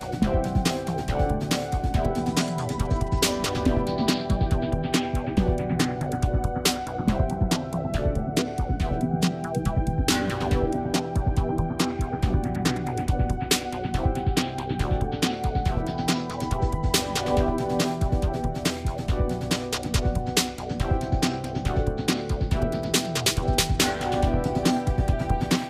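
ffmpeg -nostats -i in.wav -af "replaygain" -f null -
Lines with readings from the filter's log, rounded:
track_gain = +5.8 dB
track_peak = 0.306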